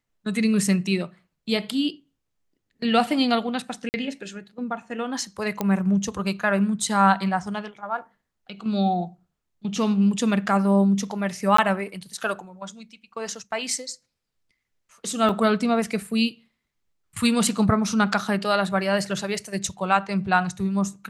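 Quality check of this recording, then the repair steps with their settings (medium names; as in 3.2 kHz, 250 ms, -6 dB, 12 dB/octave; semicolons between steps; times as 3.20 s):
3.89–3.94 s: dropout 49 ms
5.61 s: pop -11 dBFS
11.57–11.58 s: dropout 14 ms
15.29 s: dropout 3.6 ms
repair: de-click; interpolate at 3.89 s, 49 ms; interpolate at 11.57 s, 14 ms; interpolate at 15.29 s, 3.6 ms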